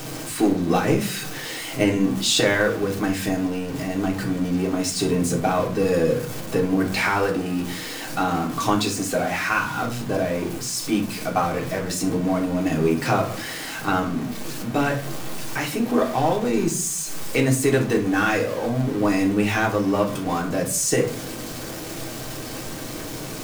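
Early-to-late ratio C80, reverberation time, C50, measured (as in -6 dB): 15.0 dB, 0.50 s, 10.0 dB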